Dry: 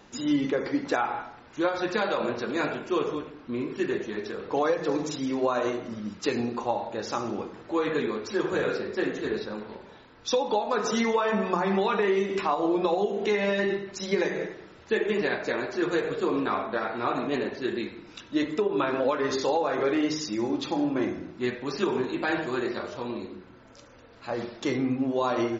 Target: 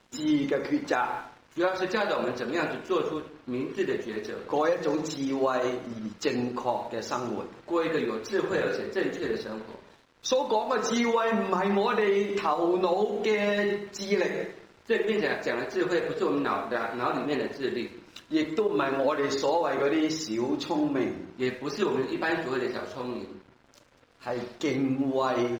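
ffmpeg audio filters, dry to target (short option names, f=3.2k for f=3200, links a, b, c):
-af "asetrate=45392,aresample=44100,atempo=0.971532,aeval=exprs='sgn(val(0))*max(abs(val(0))-0.00237,0)':c=same"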